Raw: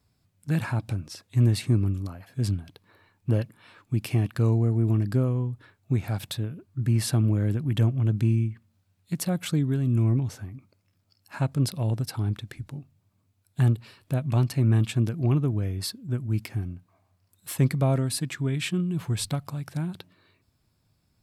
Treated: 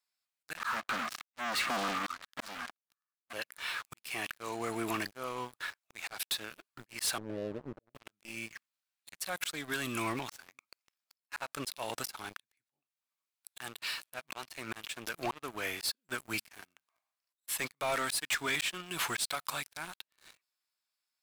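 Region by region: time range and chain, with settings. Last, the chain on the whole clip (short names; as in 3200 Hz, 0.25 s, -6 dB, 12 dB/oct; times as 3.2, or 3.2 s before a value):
0.57–3.33 double band-pass 530 Hz, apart 2.4 oct + sample leveller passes 5
7.18–7.95 G.711 law mismatch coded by mu + rippled Chebyshev low-pass 630 Hz, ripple 3 dB + auto swell 0.501 s
whole clip: HPF 1300 Hz 12 dB/oct; auto swell 0.409 s; sample leveller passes 5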